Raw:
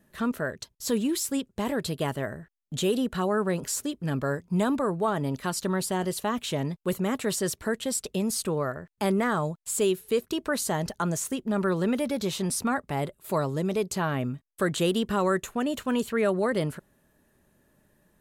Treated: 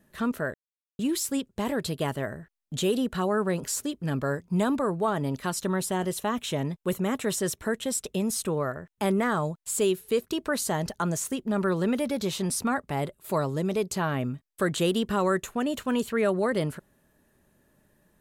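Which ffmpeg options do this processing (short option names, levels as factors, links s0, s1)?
-filter_complex "[0:a]asettb=1/sr,asplit=3[s0][s1][s2];[s0]atrim=end=5.524[s3];[s1]atrim=start=5.52:end=9.24,asetpts=PTS-STARTPTS,afade=t=in:d=0.004:c=qsin,afade=t=out:st=3.716:d=0.004:c=qsin,bandreject=f=4600:w=8.1[s4];[s2]atrim=start=9.236[s5];[s3][s4]acrossfade=d=0.004:c1=hsin:c2=qsin[s6];[s6][s5]acrossfade=d=0.004:c1=qsin:c2=hsin,asplit=3[s7][s8][s9];[s7]atrim=end=0.54,asetpts=PTS-STARTPTS,afade=t=out:st=0.536:d=0.004:c=hsin[s10];[s8]atrim=start=0.54:end=0.99,asetpts=PTS-STARTPTS,volume=0[s11];[s9]atrim=start=0.99,asetpts=PTS-STARTPTS,afade=t=in:d=0.004:c=hsin[s12];[s10][s11][s12]concat=n=3:v=0:a=1"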